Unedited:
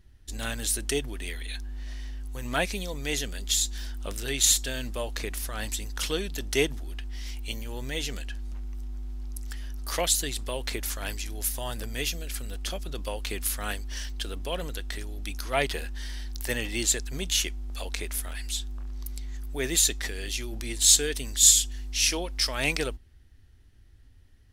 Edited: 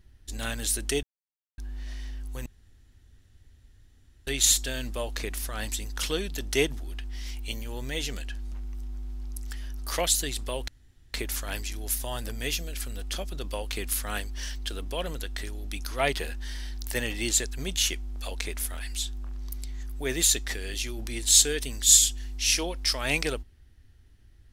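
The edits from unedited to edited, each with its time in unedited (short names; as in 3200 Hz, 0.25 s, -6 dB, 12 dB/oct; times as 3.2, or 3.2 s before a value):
1.03–1.58 mute
2.46–4.27 room tone
10.68 insert room tone 0.46 s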